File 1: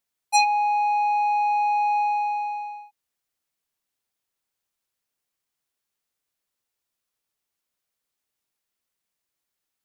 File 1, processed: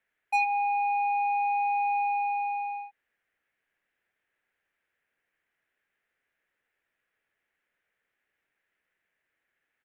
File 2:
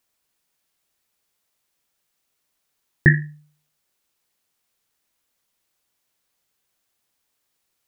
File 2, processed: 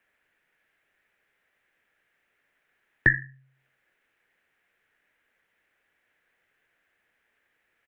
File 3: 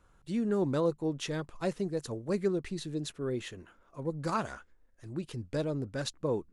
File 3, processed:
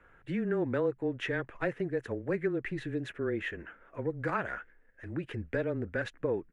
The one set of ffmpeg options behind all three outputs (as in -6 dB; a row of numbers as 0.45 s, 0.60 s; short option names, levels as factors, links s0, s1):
-af "firequalizer=gain_entry='entry(180,0);entry(480,6);entry(1100,0);entry(1700,15);entry(4400,-14)':delay=0.05:min_phase=1,acompressor=threshold=0.02:ratio=2,afreqshift=-17,volume=1.19"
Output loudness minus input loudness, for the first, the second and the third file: -5.0 LU, -5.0 LU, 0.0 LU